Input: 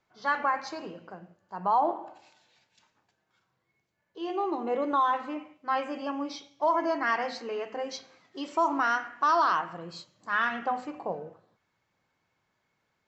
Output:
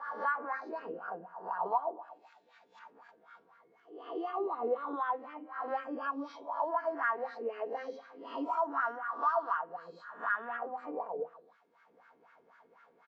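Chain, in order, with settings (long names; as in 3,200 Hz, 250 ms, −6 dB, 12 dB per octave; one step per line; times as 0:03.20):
peak hold with a rise ahead of every peak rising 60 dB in 0.54 s
comb filter 4.3 ms, depth 56%
0:10.56–0:11.19: downward compressor, threshold −31 dBFS, peak gain reduction 8 dB
LFO wah 4 Hz 350–1,500 Hz, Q 4.4
multiband upward and downward compressor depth 70%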